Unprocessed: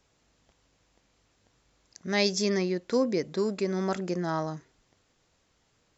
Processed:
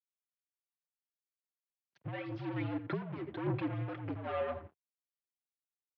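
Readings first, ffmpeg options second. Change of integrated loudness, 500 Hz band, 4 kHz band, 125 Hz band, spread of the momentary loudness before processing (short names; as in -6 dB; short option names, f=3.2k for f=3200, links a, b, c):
-10.0 dB, -12.0 dB, -21.5 dB, -2.5 dB, 8 LU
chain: -filter_complex "[0:a]afftdn=nr=16:nf=-52,aecho=1:1:4.8:0.76,alimiter=limit=-16dB:level=0:latency=1:release=432,acompressor=threshold=-29dB:ratio=2.5,asplit=2[a][b];[b]adelay=86,lowpass=f=1.1k:p=1,volume=-11dB,asplit=2[c][d];[d]adelay=86,lowpass=f=1.1k:p=1,volume=0.18[e];[c][e]amix=inputs=2:normalize=0[f];[a][f]amix=inputs=2:normalize=0,asoftclip=type=tanh:threshold=-36.5dB,aphaser=in_gain=1:out_gain=1:delay=4.9:decay=0.46:speed=1.7:type=sinusoidal,tremolo=f=1.1:d=0.48,aeval=exprs='sgn(val(0))*max(abs(val(0))-0.00133,0)':c=same,highpass=f=190:t=q:w=0.5412,highpass=f=190:t=q:w=1.307,lowpass=f=3.2k:t=q:w=0.5176,lowpass=f=3.2k:t=q:w=0.7071,lowpass=f=3.2k:t=q:w=1.932,afreqshift=-72,volume=4.5dB"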